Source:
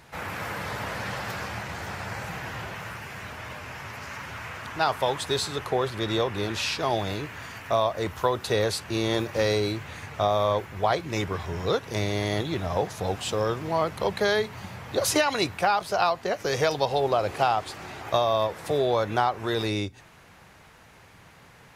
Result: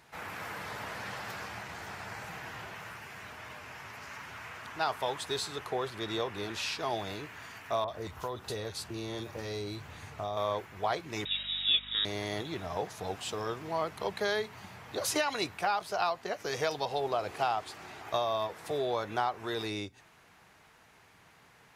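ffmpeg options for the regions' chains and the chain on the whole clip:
ffmpeg -i in.wav -filter_complex "[0:a]asettb=1/sr,asplit=3[link_01][link_02][link_03];[link_01]atrim=end=7.844[link_04];[link_02]atrim=start=7.84:end=10.37,asetpts=PTS-STARTPTS,afade=type=in:duration=0.004:curve=qsin,afade=type=out:start_time=2.526:duration=0.004:curve=qsin,lowshelf=frequency=120:gain=10.5,acompressor=threshold=-27dB:ratio=2:attack=3.2:release=140:knee=1:detection=peak,acrossover=split=2000[link_05][link_06];[link_06]adelay=40[link_07];[link_05][link_07]amix=inputs=2:normalize=0,atrim=end_sample=111573[link_08];[link_03]atrim=start=10.366[link_09];[link_04][link_08]acrossfade=duration=0.004:curve1=hsin:curve2=qsin[link_10];[link_10][link_09]acrossfade=duration=0.004:curve1=qsin:curve2=hsin,asettb=1/sr,asplit=3[link_11][link_12][link_13];[link_11]atrim=end=11.254[link_14];[link_12]atrim=start=11.25:end=12.05,asetpts=PTS-STARTPTS,afade=type=in:duration=0.004:curve=qsin,afade=type=out:start_time=0.796:duration=0.004:curve=qsin,equalizer=frequency=320:width_type=o:width=2.4:gain=5.5,lowpass=frequency=3300:width_type=q:width=0.5098,lowpass=frequency=3300:width_type=q:width=0.6013,lowpass=frequency=3300:width_type=q:width=0.9,lowpass=frequency=3300:width_type=q:width=2.563,afreqshift=-3900,aeval=exprs='val(0)+0.00891*(sin(2*PI*50*n/s)+sin(2*PI*2*50*n/s)/2+sin(2*PI*3*50*n/s)/3+sin(2*PI*4*50*n/s)/4+sin(2*PI*5*50*n/s)/5)':channel_layout=same[link_15];[link_13]atrim=start=12.046[link_16];[link_14][link_15]acrossfade=duration=0.004:curve1=hsin:curve2=qsin[link_17];[link_17][link_16]acrossfade=duration=0.004:curve1=qsin:curve2=hsin,lowshelf=frequency=180:gain=-8,bandreject=frequency=540:width=12,volume=-6.5dB" out.wav

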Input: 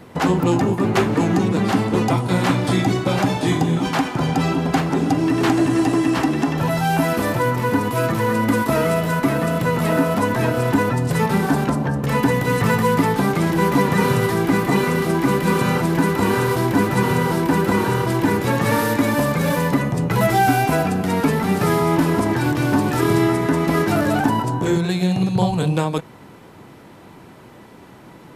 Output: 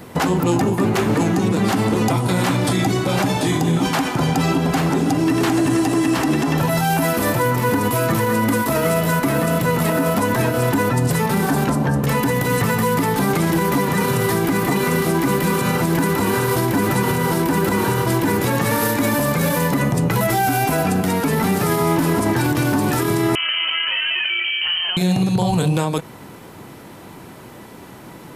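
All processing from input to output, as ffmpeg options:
ffmpeg -i in.wav -filter_complex "[0:a]asettb=1/sr,asplit=3[link_01][link_02][link_03];[link_01]atrim=end=23.354[link_04];[link_02]atrim=start=23.35:end=24.97,asetpts=PTS-STARTPTS,afade=type=in:duration=0.004:curve=qsin,afade=type=out:start_time=1.616:duration=0.004:curve=qsin,highpass=frequency=360:poles=1,acompressor=threshold=-22dB:ratio=6:attack=3.2:release=140:knee=1:detection=peak,lowpass=frequency=2800:width_type=q:width=0.5098,lowpass=frequency=2800:width_type=q:width=0.6013,lowpass=frequency=2800:width_type=q:width=0.9,lowpass=frequency=2800:width_type=q:width=2.563,afreqshift=-3300[link_05];[link_03]atrim=start=24.966[link_06];[link_04][link_05]acrossfade=duration=0.004:curve1=hsin:curve2=qsin[link_07];[link_07][link_06]acrossfade=duration=0.004:curve1=qsin:curve2=hsin,highshelf=frequency=7600:gain=10,alimiter=limit=-13.5dB:level=0:latency=1:release=78,volume=4dB" out.wav

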